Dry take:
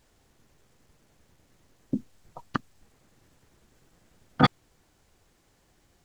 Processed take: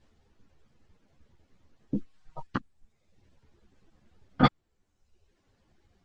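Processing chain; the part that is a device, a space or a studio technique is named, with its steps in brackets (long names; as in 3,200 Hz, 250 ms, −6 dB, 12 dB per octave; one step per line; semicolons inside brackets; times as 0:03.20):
reverb reduction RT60 1 s
string-machine ensemble chorus (string-ensemble chorus; low-pass filter 5,100 Hz 12 dB per octave)
0:01.94–0:02.47: comb filter 6.4 ms, depth 91%
low-shelf EQ 350 Hz +5.5 dB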